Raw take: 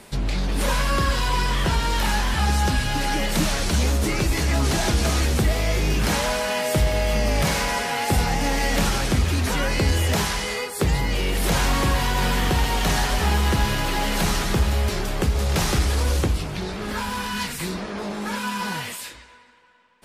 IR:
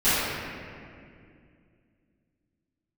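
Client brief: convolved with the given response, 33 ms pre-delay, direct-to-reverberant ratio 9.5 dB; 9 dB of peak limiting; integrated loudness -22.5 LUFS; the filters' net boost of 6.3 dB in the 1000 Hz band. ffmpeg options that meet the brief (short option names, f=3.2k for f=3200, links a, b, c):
-filter_complex "[0:a]equalizer=f=1k:t=o:g=7.5,alimiter=limit=-16.5dB:level=0:latency=1,asplit=2[a][b];[1:a]atrim=start_sample=2205,adelay=33[c];[b][c]afir=irnorm=-1:irlink=0,volume=-28dB[d];[a][d]amix=inputs=2:normalize=0,volume=2.5dB"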